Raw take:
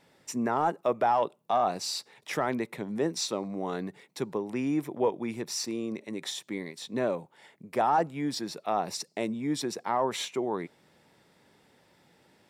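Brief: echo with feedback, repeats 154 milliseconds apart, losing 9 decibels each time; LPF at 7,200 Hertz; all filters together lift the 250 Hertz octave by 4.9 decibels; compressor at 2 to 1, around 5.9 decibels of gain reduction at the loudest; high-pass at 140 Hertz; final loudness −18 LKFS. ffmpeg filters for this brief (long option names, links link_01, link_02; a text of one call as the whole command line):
ffmpeg -i in.wav -af "highpass=140,lowpass=7200,equalizer=frequency=250:width_type=o:gain=6.5,acompressor=threshold=-31dB:ratio=2,aecho=1:1:154|308|462|616:0.355|0.124|0.0435|0.0152,volume=15dB" out.wav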